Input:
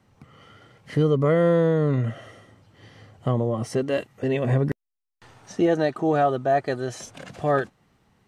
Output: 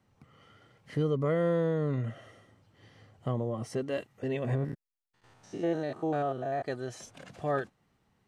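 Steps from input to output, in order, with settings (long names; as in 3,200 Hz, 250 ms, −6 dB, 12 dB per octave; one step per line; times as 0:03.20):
0:04.55–0:06.63: spectrum averaged block by block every 100 ms
level −8.5 dB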